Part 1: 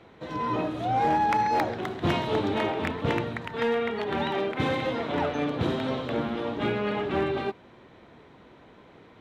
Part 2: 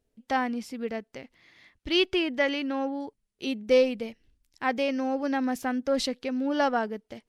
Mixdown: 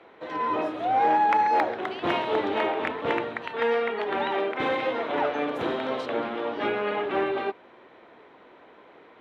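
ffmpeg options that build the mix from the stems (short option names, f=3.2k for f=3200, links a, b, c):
-filter_complex "[0:a]volume=3dB[a];[1:a]highpass=1.3k,acompressor=threshold=-32dB:ratio=6,volume=-6.5dB[b];[a][b]amix=inputs=2:normalize=0,acrossover=split=300 3400:gain=0.112 1 0.224[c][d][e];[c][d][e]amix=inputs=3:normalize=0"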